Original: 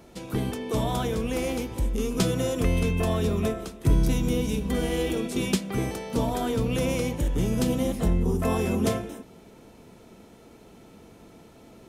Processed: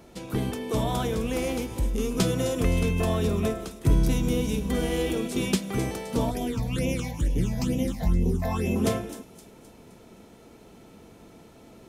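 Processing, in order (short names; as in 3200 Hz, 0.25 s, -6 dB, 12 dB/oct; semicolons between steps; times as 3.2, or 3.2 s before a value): 6.31–8.76 phaser stages 8, 2.2 Hz, lowest notch 360–1400 Hz; thin delay 0.26 s, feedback 48%, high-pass 5100 Hz, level -10 dB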